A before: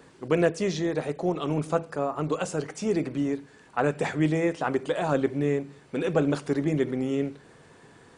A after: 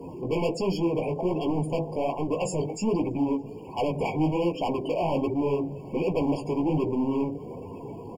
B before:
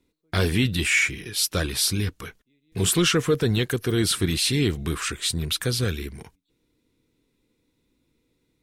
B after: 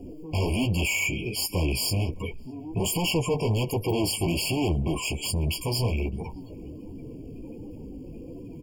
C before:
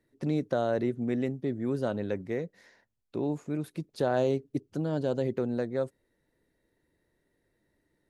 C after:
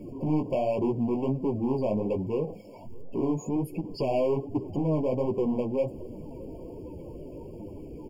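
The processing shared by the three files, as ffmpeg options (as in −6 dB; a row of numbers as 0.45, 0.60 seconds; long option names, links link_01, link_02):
-filter_complex "[0:a]aeval=exprs='val(0)+0.5*0.0188*sgn(val(0))':channel_layout=same,afftdn=noise_reduction=24:noise_floor=-38,acontrast=60,volume=19.5dB,asoftclip=hard,volume=-19.5dB,flanger=delay=9.9:depth=9.4:regen=-11:speed=1.3:shape=sinusoidal,asplit=2[link_01][link_02];[link_02]adelay=614,lowpass=frequency=1100:poles=1,volume=-23.5dB,asplit=2[link_03][link_04];[link_04]adelay=614,lowpass=frequency=1100:poles=1,volume=0.55,asplit=2[link_05][link_06];[link_06]adelay=614,lowpass=frequency=1100:poles=1,volume=0.55,asplit=2[link_07][link_08];[link_08]adelay=614,lowpass=frequency=1100:poles=1,volume=0.55[link_09];[link_01][link_03][link_05][link_07][link_09]amix=inputs=5:normalize=0,afftfilt=real='re*eq(mod(floor(b*sr/1024/1100),2),0)':imag='im*eq(mod(floor(b*sr/1024/1100),2),0)':win_size=1024:overlap=0.75"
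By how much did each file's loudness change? 0.0, −3.5, +2.5 LU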